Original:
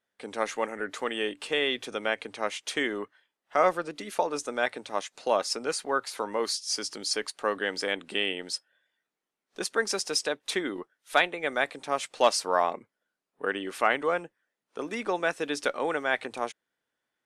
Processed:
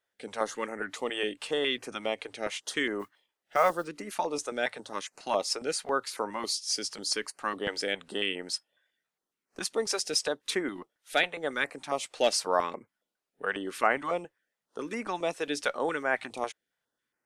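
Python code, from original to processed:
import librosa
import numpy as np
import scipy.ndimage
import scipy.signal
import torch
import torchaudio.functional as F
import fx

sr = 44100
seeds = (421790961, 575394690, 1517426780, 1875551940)

y = fx.mod_noise(x, sr, seeds[0], snr_db=28, at=(2.99, 3.88))
y = fx.filter_held_notch(y, sr, hz=7.3, low_hz=210.0, high_hz=3500.0)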